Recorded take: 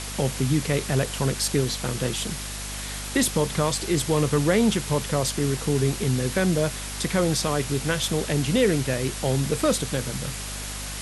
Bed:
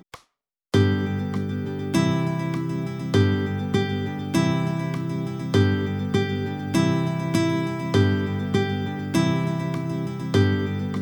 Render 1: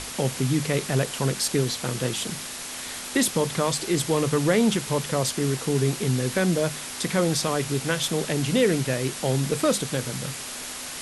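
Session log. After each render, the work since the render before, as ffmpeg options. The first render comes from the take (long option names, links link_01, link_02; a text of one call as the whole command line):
ffmpeg -i in.wav -af "bandreject=frequency=50:width_type=h:width=6,bandreject=frequency=100:width_type=h:width=6,bandreject=frequency=150:width_type=h:width=6,bandreject=frequency=200:width_type=h:width=6" out.wav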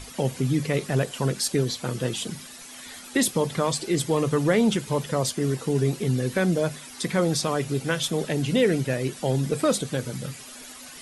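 ffmpeg -i in.wav -af "afftdn=noise_reduction=12:noise_floor=-35" out.wav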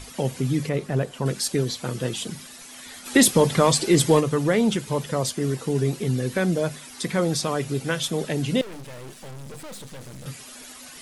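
ffmpeg -i in.wav -filter_complex "[0:a]asettb=1/sr,asplit=3[link_01][link_02][link_03];[link_01]atrim=end=0.694[link_04];[link_02]atrim=start=0.69:end=1.26,asetpts=PTS-STARTPTS,afade=type=in:duration=0.004:curve=qsin,afade=type=out:start_time=0.566:duration=0.004:curve=qsin,highshelf=frequency=2100:gain=-9[link_05];[link_03]atrim=start=1.256[link_06];[link_04][link_05]acrossfade=duration=0.004:curve1=hsin:curve2=qsin[link_07];[link_07][link_06]acrossfade=duration=0.004:curve1=qsin:curve2=hsin,asplit=3[link_08][link_09][link_10];[link_08]afade=type=out:start_time=3.05:duration=0.02[link_11];[link_09]acontrast=76,afade=type=in:start_time=3.05:duration=0.02,afade=type=out:start_time=4.19:duration=0.02[link_12];[link_10]afade=type=in:start_time=4.19:duration=0.02[link_13];[link_11][link_12][link_13]amix=inputs=3:normalize=0,asettb=1/sr,asplit=3[link_14][link_15][link_16];[link_14]atrim=end=8.614[link_17];[link_15]atrim=start=8.61:end=10.26,asetpts=PTS-STARTPTS,afade=type=in:duration=0.004:curve=qsin,afade=type=out:start_time=1.646:duration=0.004:curve=qsin,aeval=exprs='(tanh(79.4*val(0)+0.8)-tanh(0.8))/79.4':channel_layout=same[link_18];[link_16]atrim=start=10.256[link_19];[link_17][link_18]acrossfade=duration=0.004:curve1=hsin:curve2=qsin[link_20];[link_20][link_19]acrossfade=duration=0.004:curve1=qsin:curve2=hsin" out.wav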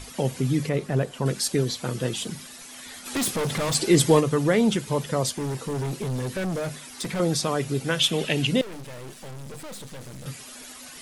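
ffmpeg -i in.wav -filter_complex "[0:a]asettb=1/sr,asplit=3[link_01][link_02][link_03];[link_01]atrim=end=2.224[link_04];[link_02]atrim=start=2.22:end=3.75,asetpts=PTS-STARTPTS,afade=type=in:duration=0.004:curve=qsin,afade=type=out:start_time=1.526:duration=0.004:curve=qsin,volume=23.5dB,asoftclip=hard,volume=-23.5dB[link_05];[link_03]atrim=start=3.746[link_06];[link_04][link_05]acrossfade=duration=0.004:curve1=hsin:curve2=qsin[link_07];[link_07][link_06]acrossfade=duration=0.004:curve1=qsin:curve2=hsin,asettb=1/sr,asplit=3[link_08][link_09][link_10];[link_08]atrim=end=5.374[link_11];[link_09]atrim=start=5.37:end=7.2,asetpts=PTS-STARTPTS,afade=type=in:duration=0.004:curve=qsin,afade=type=out:start_time=1.826:duration=0.004:curve=qsin,asoftclip=type=hard:threshold=-25.5dB[link_12];[link_10]atrim=start=7.196[link_13];[link_11][link_12]acrossfade=duration=0.004:curve1=hsin:curve2=qsin[link_14];[link_14][link_13]acrossfade=duration=0.004:curve1=qsin:curve2=hsin,asettb=1/sr,asplit=3[link_15][link_16][link_17];[link_15]atrim=end=7.994[link_18];[link_16]atrim=start=7.99:end=8.47,asetpts=PTS-STARTPTS,afade=type=in:duration=0.004:curve=qsin,afade=type=out:start_time=0.476:duration=0.004:curve=qsin,equalizer=frequency=2800:width_type=o:width=0.73:gain=13.5[link_19];[link_17]atrim=start=8.466[link_20];[link_18][link_19]acrossfade=duration=0.004:curve1=hsin:curve2=qsin[link_21];[link_21][link_20]acrossfade=duration=0.004:curve1=qsin:curve2=hsin" out.wav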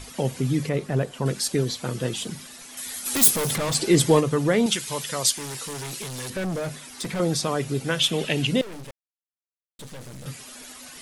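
ffmpeg -i in.wav -filter_complex "[0:a]asettb=1/sr,asplit=3[link_01][link_02][link_03];[link_01]atrim=end=2.774[link_04];[link_02]atrim=start=2.77:end=3.56,asetpts=PTS-STARTPTS,afade=type=in:duration=0.004:curve=qsin,afade=type=out:start_time=0.786:duration=0.004:curve=qsin,aemphasis=mode=production:type=50fm[link_05];[link_03]atrim=start=3.556[link_06];[link_04][link_05]acrossfade=duration=0.004:curve1=hsin:curve2=qsin[link_07];[link_07][link_06]acrossfade=duration=0.004:curve1=qsin:curve2=hsin,asettb=1/sr,asplit=3[link_08][link_09][link_10];[link_08]atrim=end=4.664[link_11];[link_09]atrim=start=4.66:end=6.3,asetpts=PTS-STARTPTS,afade=type=in:duration=0.004:curve=qsin,afade=type=out:start_time=1.636:duration=0.004:curve=qsin,tiltshelf=frequency=1200:gain=-9[link_12];[link_10]atrim=start=6.296[link_13];[link_11][link_12]acrossfade=duration=0.004:curve1=hsin:curve2=qsin[link_14];[link_14][link_13]acrossfade=duration=0.004:curve1=qsin:curve2=hsin,asplit=3[link_15][link_16][link_17];[link_15]atrim=end=8.91,asetpts=PTS-STARTPTS,afade=type=out:start_time=8.906:duration=0.004:curve=hsin[link_18];[link_16]atrim=start=8.91:end=9.79,asetpts=PTS-STARTPTS,volume=0[link_19];[link_17]atrim=start=9.79,asetpts=PTS-STARTPTS,afade=type=in:duration=0.004:curve=hsin[link_20];[link_18][link_19][link_20]concat=n=3:v=0:a=1" out.wav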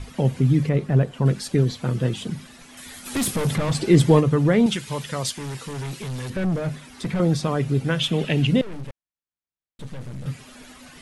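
ffmpeg -i in.wav -af "lowpass=frequency=12000:width=0.5412,lowpass=frequency=12000:width=1.3066,bass=frequency=250:gain=8,treble=frequency=4000:gain=-9" out.wav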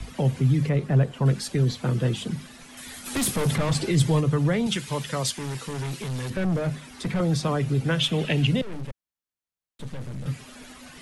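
ffmpeg -i in.wav -filter_complex "[0:a]acrossover=split=190|3000[link_01][link_02][link_03];[link_02]acompressor=threshold=-20dB:ratio=6[link_04];[link_01][link_04][link_03]amix=inputs=3:normalize=0,acrossover=split=160|490|3900[link_05][link_06][link_07][link_08];[link_06]alimiter=limit=-24dB:level=0:latency=1[link_09];[link_05][link_09][link_07][link_08]amix=inputs=4:normalize=0" out.wav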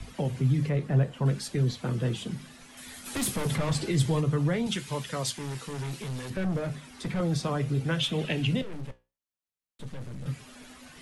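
ffmpeg -i in.wav -af "flanger=delay=8.5:depth=8.2:regen=-68:speed=0.61:shape=triangular" out.wav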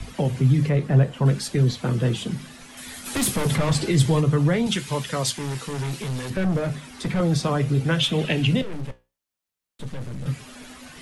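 ffmpeg -i in.wav -af "volume=6.5dB" out.wav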